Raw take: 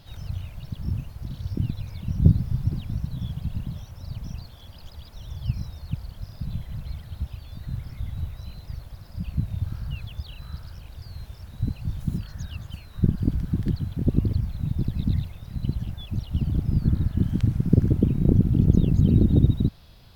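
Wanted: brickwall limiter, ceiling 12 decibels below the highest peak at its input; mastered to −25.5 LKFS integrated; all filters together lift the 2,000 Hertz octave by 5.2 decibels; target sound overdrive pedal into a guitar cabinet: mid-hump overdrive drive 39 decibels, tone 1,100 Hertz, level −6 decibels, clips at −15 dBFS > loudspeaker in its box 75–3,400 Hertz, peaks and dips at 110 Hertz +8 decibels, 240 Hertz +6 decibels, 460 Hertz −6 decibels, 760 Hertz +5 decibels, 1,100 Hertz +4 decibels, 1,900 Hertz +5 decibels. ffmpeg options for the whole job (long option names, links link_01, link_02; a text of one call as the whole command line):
ffmpeg -i in.wav -filter_complex "[0:a]equalizer=frequency=2000:width_type=o:gain=4,alimiter=limit=-15dB:level=0:latency=1,asplit=2[link_01][link_02];[link_02]highpass=frequency=720:poles=1,volume=39dB,asoftclip=type=tanh:threshold=-15dB[link_03];[link_01][link_03]amix=inputs=2:normalize=0,lowpass=frequency=1100:poles=1,volume=-6dB,highpass=75,equalizer=frequency=110:width_type=q:width=4:gain=8,equalizer=frequency=240:width_type=q:width=4:gain=6,equalizer=frequency=460:width_type=q:width=4:gain=-6,equalizer=frequency=760:width_type=q:width=4:gain=5,equalizer=frequency=1100:width_type=q:width=4:gain=4,equalizer=frequency=1900:width_type=q:width=4:gain=5,lowpass=frequency=3400:width=0.5412,lowpass=frequency=3400:width=1.3066,volume=-3dB" out.wav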